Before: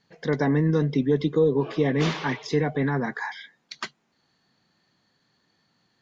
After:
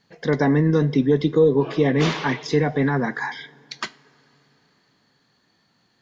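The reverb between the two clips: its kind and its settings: two-slope reverb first 0.4 s, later 4.1 s, from -18 dB, DRR 16 dB; trim +4 dB

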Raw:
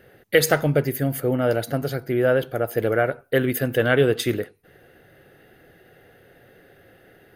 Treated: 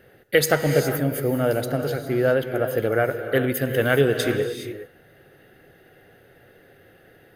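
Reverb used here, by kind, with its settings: gated-style reverb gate 440 ms rising, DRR 7 dB; trim -1 dB

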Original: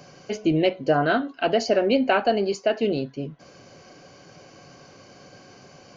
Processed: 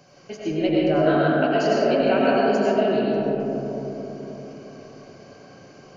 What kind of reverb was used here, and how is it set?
algorithmic reverb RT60 4.2 s, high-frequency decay 0.25×, pre-delay 60 ms, DRR -6.5 dB; trim -6.5 dB

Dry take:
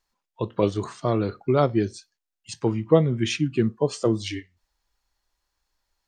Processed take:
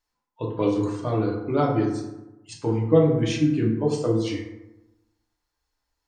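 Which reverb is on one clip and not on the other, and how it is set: FDN reverb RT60 1 s, low-frequency decay 1.1×, high-frequency decay 0.45×, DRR -2.5 dB; trim -6 dB

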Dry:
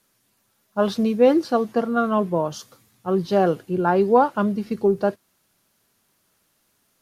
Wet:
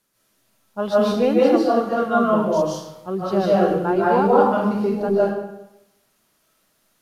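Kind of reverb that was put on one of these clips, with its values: algorithmic reverb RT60 0.88 s, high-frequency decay 0.8×, pre-delay 110 ms, DRR -7 dB; trim -5 dB

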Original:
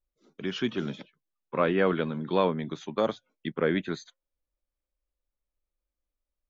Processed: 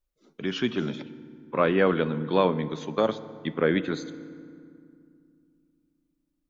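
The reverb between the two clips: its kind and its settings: FDN reverb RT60 2.3 s, low-frequency decay 1.5×, high-frequency decay 0.6×, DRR 13.5 dB; trim +2.5 dB

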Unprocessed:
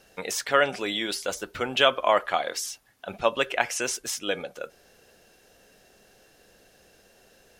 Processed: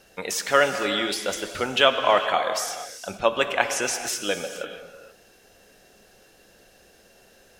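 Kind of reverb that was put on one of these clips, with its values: gated-style reverb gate 490 ms flat, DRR 7 dB; trim +2 dB

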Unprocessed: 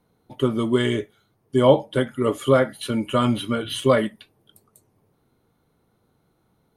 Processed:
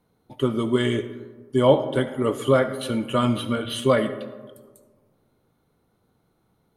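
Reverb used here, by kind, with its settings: algorithmic reverb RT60 1.5 s, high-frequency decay 0.35×, pre-delay 30 ms, DRR 11.5 dB; trim -1.5 dB

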